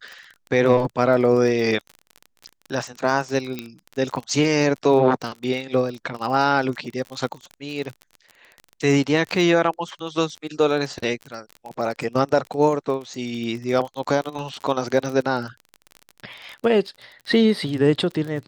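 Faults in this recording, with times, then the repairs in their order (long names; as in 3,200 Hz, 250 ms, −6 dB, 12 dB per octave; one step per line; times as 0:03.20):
surface crackle 30 per second −29 dBFS
0:03.59: click −14 dBFS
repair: click removal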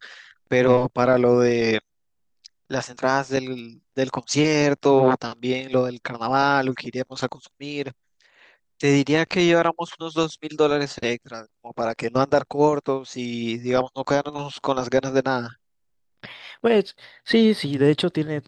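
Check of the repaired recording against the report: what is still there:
0:03.59: click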